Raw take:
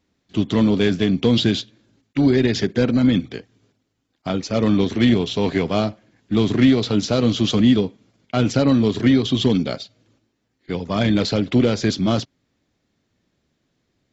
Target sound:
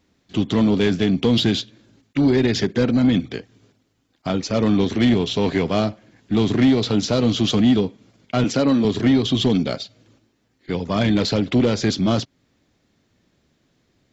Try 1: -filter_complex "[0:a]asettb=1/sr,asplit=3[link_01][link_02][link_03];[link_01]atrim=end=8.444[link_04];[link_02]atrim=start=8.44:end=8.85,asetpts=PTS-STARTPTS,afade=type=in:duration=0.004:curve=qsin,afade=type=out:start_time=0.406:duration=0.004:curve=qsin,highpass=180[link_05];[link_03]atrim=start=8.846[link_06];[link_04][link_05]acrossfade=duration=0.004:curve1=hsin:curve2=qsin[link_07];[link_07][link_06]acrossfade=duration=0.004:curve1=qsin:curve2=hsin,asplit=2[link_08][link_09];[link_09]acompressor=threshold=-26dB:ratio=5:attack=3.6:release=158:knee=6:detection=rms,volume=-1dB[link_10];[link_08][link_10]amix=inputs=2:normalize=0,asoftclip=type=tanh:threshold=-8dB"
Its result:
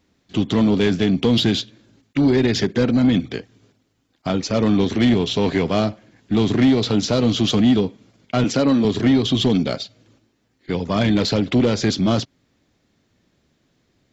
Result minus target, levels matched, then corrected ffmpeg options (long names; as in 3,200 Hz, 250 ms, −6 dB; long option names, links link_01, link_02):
downward compressor: peak gain reduction −6.5 dB
-filter_complex "[0:a]asettb=1/sr,asplit=3[link_01][link_02][link_03];[link_01]atrim=end=8.444[link_04];[link_02]atrim=start=8.44:end=8.85,asetpts=PTS-STARTPTS,afade=type=in:duration=0.004:curve=qsin,afade=type=out:start_time=0.406:duration=0.004:curve=qsin,highpass=180[link_05];[link_03]atrim=start=8.846[link_06];[link_04][link_05]acrossfade=duration=0.004:curve1=hsin:curve2=qsin[link_07];[link_07][link_06]acrossfade=duration=0.004:curve1=qsin:curve2=hsin,asplit=2[link_08][link_09];[link_09]acompressor=threshold=-34dB:ratio=5:attack=3.6:release=158:knee=6:detection=rms,volume=-1dB[link_10];[link_08][link_10]amix=inputs=2:normalize=0,asoftclip=type=tanh:threshold=-8dB"